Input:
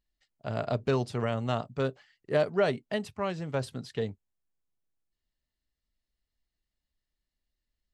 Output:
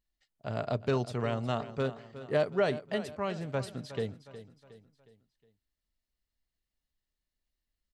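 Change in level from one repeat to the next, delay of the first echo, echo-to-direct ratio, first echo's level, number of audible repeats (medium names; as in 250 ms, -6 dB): -7.0 dB, 363 ms, -13.0 dB, -14.0 dB, 3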